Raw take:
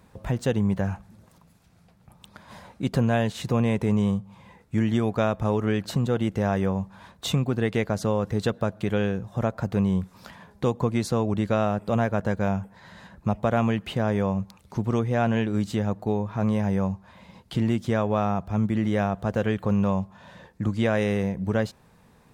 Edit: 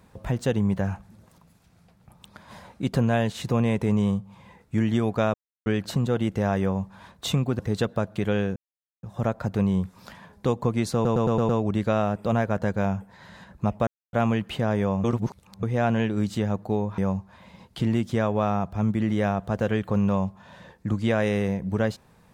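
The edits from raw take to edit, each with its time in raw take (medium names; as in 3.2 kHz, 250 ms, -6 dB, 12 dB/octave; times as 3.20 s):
5.34–5.66 s: mute
7.59–8.24 s: delete
9.21 s: insert silence 0.47 s
11.12 s: stutter 0.11 s, 6 plays
13.50 s: insert silence 0.26 s
14.41–15.00 s: reverse
16.35–16.73 s: delete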